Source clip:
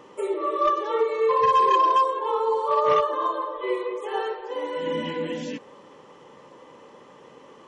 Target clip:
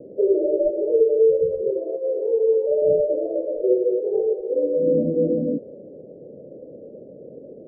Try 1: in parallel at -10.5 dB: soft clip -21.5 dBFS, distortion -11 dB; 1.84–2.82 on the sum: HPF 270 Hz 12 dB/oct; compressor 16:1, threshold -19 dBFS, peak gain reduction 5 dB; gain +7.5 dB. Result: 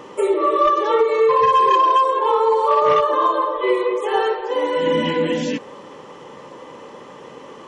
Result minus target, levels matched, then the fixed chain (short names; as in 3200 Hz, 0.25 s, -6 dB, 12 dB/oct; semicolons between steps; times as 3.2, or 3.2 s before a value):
500 Hz band -3.5 dB
in parallel at -10.5 dB: soft clip -21.5 dBFS, distortion -11 dB; 1.84–2.82 on the sum: HPF 270 Hz 12 dB/oct; compressor 16:1, threshold -19 dBFS, peak gain reduction 5 dB; steep low-pass 660 Hz 96 dB/oct; gain +7.5 dB